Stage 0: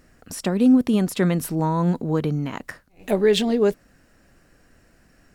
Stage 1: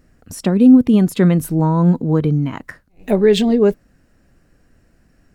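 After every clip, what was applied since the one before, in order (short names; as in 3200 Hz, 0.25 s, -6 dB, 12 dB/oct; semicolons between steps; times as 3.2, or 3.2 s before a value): spectral noise reduction 6 dB; low shelf 380 Hz +8 dB; gain +1.5 dB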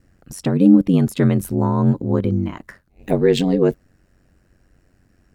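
ring modulator 46 Hz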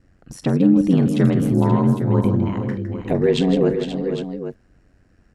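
limiter -7 dBFS, peak gain reduction 5 dB; air absorption 55 m; tapped delay 44/160/459/530/806 ms -14.5/-10/-10/-11.5/-11.5 dB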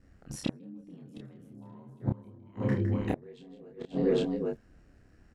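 flipped gate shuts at -12 dBFS, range -30 dB; doubler 29 ms -2 dB; gain -5 dB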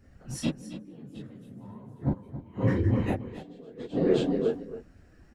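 phase scrambler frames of 50 ms; echo 0.274 s -13 dB; gain +3.5 dB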